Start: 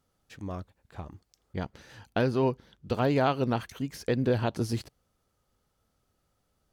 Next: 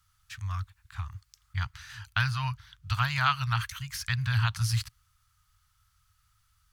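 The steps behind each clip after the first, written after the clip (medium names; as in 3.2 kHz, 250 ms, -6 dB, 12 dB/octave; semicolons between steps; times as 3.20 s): Chebyshev band-stop 110–1200 Hz, order 3; trim +8 dB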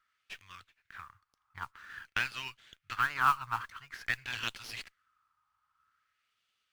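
LFO band-pass sine 0.5 Hz 940–2900 Hz; modulation noise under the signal 23 dB; sliding maximum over 3 samples; trim +3 dB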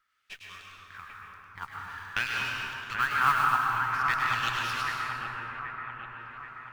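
two-band feedback delay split 2.3 kHz, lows 781 ms, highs 103 ms, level -5 dB; plate-style reverb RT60 2.9 s, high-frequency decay 0.4×, pre-delay 110 ms, DRR -1.5 dB; trim +1.5 dB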